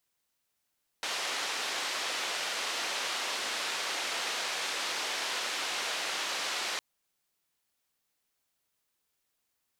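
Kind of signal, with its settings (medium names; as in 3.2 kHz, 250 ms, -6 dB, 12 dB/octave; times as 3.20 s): noise band 460–4600 Hz, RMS -34 dBFS 5.76 s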